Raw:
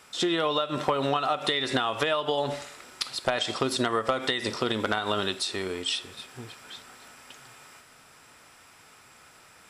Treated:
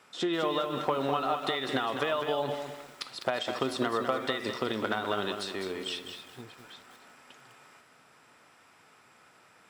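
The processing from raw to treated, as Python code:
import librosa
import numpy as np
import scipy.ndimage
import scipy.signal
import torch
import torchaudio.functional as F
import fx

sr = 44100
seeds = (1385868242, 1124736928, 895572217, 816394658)

y = scipy.signal.sosfilt(scipy.signal.butter(2, 130.0, 'highpass', fs=sr, output='sos'), x)
y = fx.high_shelf(y, sr, hz=3700.0, db=-9.5)
y = fx.echo_crushed(y, sr, ms=203, feedback_pct=35, bits=8, wet_db=-7)
y = F.gain(torch.from_numpy(y), -3.0).numpy()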